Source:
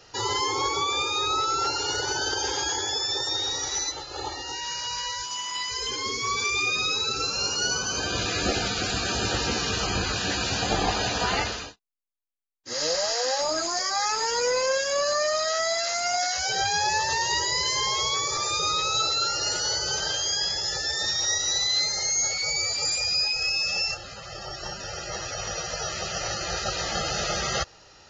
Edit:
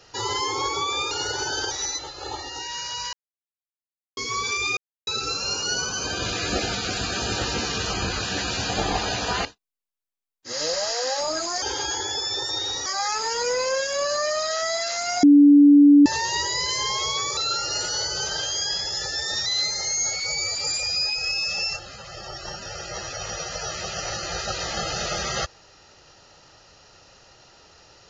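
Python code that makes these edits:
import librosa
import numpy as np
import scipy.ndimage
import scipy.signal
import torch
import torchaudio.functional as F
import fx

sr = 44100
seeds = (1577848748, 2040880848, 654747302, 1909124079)

y = fx.edit(x, sr, fx.cut(start_s=1.11, length_s=0.69),
    fx.move(start_s=2.4, length_s=1.24, to_s=13.83),
    fx.silence(start_s=5.06, length_s=1.04),
    fx.silence(start_s=6.7, length_s=0.3),
    fx.cut(start_s=11.38, length_s=0.28),
    fx.bleep(start_s=16.2, length_s=0.83, hz=288.0, db=-8.5),
    fx.cut(start_s=18.34, length_s=0.74),
    fx.cut(start_s=21.17, length_s=0.47), tone=tone)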